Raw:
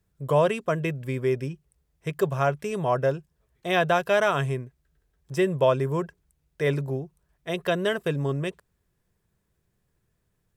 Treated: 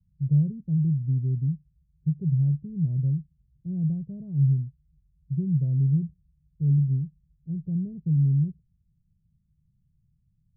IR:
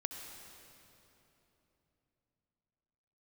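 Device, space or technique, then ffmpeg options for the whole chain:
the neighbour's flat through the wall: -af "lowpass=frequency=170:width=0.5412,lowpass=frequency=170:width=1.3066,equalizer=frequency=160:width_type=o:width=0.77:gain=4.5,volume=5.5dB"

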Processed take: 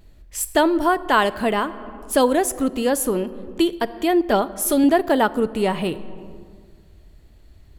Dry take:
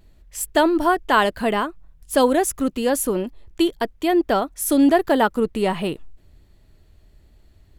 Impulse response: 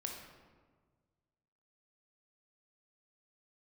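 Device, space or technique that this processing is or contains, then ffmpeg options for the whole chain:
compressed reverb return: -filter_complex "[0:a]asettb=1/sr,asplit=3[link_01][link_02][link_03];[link_01]atrim=end=4.254[link_04];[link_02]atrim=start=4.25:end=4.84,asetpts=PTS-STARTPTS,afade=type=in:duration=0.004:curve=qsin,afade=type=out:start_time=0.586:duration=0.004:curve=qsin,aecho=1:1:4.9:0.52,atrim=end_sample=26019[link_05];[link_03]atrim=start=4.836[link_06];[link_04][link_05]acrossfade=duration=0.004:curve1=hsin:curve2=qsin[link_07];[link_07][link_06]acrossfade=duration=0.004:curve1=qsin:curve2=hsin,asplit=2[link_08][link_09];[1:a]atrim=start_sample=2205[link_10];[link_09][link_10]afir=irnorm=-1:irlink=0,acompressor=threshold=-28dB:ratio=6,volume=-0.5dB[link_11];[link_08][link_11]amix=inputs=2:normalize=0,volume=-1.5dB"

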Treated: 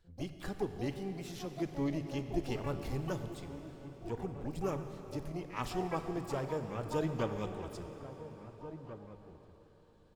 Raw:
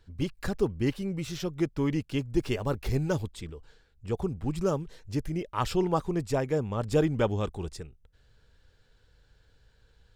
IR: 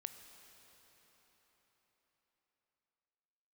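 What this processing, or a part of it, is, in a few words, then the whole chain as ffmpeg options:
shimmer-style reverb: -filter_complex "[0:a]bandreject=frequency=50:width_type=h:width=6,bandreject=frequency=100:width_type=h:width=6,bandreject=frequency=150:width_type=h:width=6,asettb=1/sr,asplit=3[link_01][link_02][link_03];[link_01]atrim=end=1.654[link_04];[link_02]atrim=start=1.65:end=2.79,asetpts=PTS-STARTPTS,afade=type=in:duration=0.004:curve=qsin,afade=type=out:start_time=1.136:duration=0.004:curve=qsin,lowshelf=frequency=230:gain=4[link_05];[link_03]atrim=start=2.786[link_06];[link_04][link_05]acrossfade=duration=0.004:curve1=hsin:curve2=qsin[link_07];[link_07][link_06]acrossfade=duration=0.004:curve1=qsin:curve2=hsin,asplit=2[link_08][link_09];[link_09]adelay=1691,volume=-12dB,highshelf=frequency=4000:gain=-38[link_10];[link_08][link_10]amix=inputs=2:normalize=0,asplit=2[link_11][link_12];[link_12]asetrate=88200,aresample=44100,atempo=0.5,volume=-9dB[link_13];[link_11][link_13]amix=inputs=2:normalize=0[link_14];[1:a]atrim=start_sample=2205[link_15];[link_14][link_15]afir=irnorm=-1:irlink=0,volume=-5dB"

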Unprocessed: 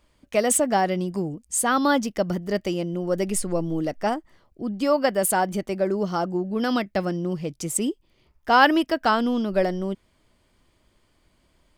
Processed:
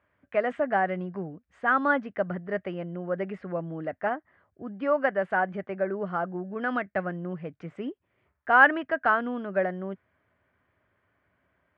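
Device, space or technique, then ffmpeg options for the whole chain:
bass cabinet: -af "highpass=frequency=90:width=0.5412,highpass=frequency=90:width=1.3066,equalizer=frequency=140:width_type=q:width=4:gain=-9,equalizer=frequency=220:width_type=q:width=4:gain=-9,equalizer=frequency=330:width_type=q:width=4:gain=-9,equalizer=frequency=480:width_type=q:width=4:gain=-4,equalizer=frequency=910:width_type=q:width=4:gain=-5,equalizer=frequency=1600:width_type=q:width=4:gain=6,lowpass=frequency=2100:width=0.5412,lowpass=frequency=2100:width=1.3066,volume=-1.5dB"

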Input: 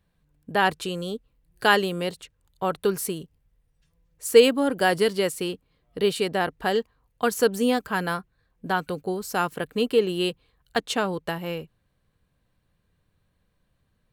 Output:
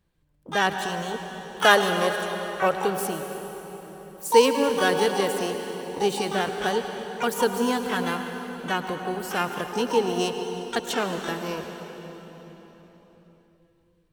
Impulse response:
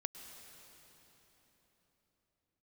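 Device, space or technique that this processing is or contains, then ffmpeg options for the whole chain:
shimmer-style reverb: -filter_complex "[0:a]asettb=1/sr,asplit=3[link_01][link_02][link_03];[link_01]atrim=end=1.144[link_04];[link_02]atrim=start=1.14:end=2.71,asetpts=PTS-STARTPTS,afade=type=in:duration=0.004:curve=qsin,afade=type=out:start_time=1.566:duration=0.004:curve=qsin,equalizer=frequency=630:width_type=o:width=0.67:gain=9,equalizer=frequency=1600:width_type=o:width=0.67:gain=4,equalizer=frequency=10000:width_type=o:width=0.67:gain=8[link_05];[link_03]atrim=start=2.706[link_06];[link_04][link_05]acrossfade=duration=0.004:curve1=hsin:curve2=qsin[link_07];[link_07][link_06]acrossfade=duration=0.004:curve1=qsin:curve2=hsin,asplit=2[link_08][link_09];[link_09]asetrate=88200,aresample=44100,atempo=0.5,volume=-6dB[link_10];[link_08][link_10]amix=inputs=2:normalize=0[link_11];[1:a]atrim=start_sample=2205[link_12];[link_11][link_12]afir=irnorm=-1:irlink=0"

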